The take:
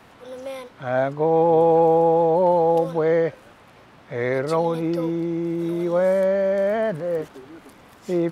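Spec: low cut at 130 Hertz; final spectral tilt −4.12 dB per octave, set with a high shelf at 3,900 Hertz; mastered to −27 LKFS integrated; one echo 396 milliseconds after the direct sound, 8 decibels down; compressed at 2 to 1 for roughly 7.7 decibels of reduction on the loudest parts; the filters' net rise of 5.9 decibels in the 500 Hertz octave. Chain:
high-pass filter 130 Hz
parametric band 500 Hz +6.5 dB
high-shelf EQ 3,900 Hz −6.5 dB
downward compressor 2 to 1, threshold −23 dBFS
single-tap delay 396 ms −8 dB
level −5 dB

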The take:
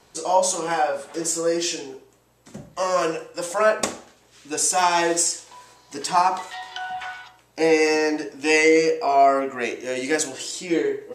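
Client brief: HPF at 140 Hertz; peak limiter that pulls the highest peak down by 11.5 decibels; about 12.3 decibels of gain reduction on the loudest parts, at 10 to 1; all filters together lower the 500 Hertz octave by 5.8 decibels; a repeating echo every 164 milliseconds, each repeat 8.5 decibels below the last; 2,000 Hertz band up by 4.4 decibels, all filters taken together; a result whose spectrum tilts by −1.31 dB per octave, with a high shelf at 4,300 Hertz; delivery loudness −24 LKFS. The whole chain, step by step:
high-pass filter 140 Hz
parametric band 500 Hz −7.5 dB
parametric band 2,000 Hz +4.5 dB
high-shelf EQ 4,300 Hz +5 dB
downward compressor 10 to 1, threshold −25 dBFS
brickwall limiter −23 dBFS
repeating echo 164 ms, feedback 38%, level −8.5 dB
level +8 dB

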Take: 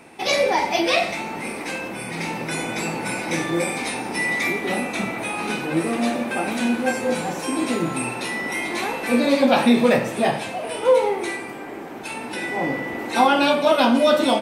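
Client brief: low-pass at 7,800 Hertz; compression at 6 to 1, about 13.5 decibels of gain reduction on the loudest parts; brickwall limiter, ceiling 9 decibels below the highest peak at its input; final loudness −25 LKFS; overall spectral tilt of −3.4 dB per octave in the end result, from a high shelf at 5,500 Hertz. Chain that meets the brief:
low-pass filter 7,800 Hz
high-shelf EQ 5,500 Hz −8.5 dB
downward compressor 6 to 1, threshold −27 dBFS
level +8.5 dB
brickwall limiter −17 dBFS

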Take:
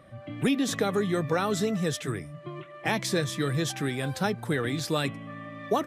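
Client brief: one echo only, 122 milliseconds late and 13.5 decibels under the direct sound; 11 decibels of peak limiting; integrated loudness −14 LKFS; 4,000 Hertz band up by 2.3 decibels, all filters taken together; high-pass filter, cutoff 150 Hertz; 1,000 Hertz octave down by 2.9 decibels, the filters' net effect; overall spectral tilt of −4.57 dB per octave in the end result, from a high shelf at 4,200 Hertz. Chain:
high-pass filter 150 Hz
parametric band 1,000 Hz −4 dB
parametric band 4,000 Hz +5.5 dB
high-shelf EQ 4,200 Hz −5 dB
brickwall limiter −24.5 dBFS
single-tap delay 122 ms −13.5 dB
level +20.5 dB

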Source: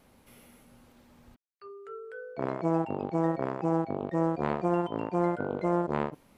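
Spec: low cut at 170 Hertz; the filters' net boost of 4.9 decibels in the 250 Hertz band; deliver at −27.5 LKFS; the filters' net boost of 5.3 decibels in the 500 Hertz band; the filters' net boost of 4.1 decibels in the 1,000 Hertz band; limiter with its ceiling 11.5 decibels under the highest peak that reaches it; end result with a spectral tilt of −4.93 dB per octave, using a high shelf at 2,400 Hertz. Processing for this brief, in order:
high-pass filter 170 Hz
parametric band 250 Hz +6.5 dB
parametric band 500 Hz +4 dB
parametric band 1,000 Hz +4 dB
high-shelf EQ 2,400 Hz −5 dB
level +6 dB
brickwall limiter −15 dBFS

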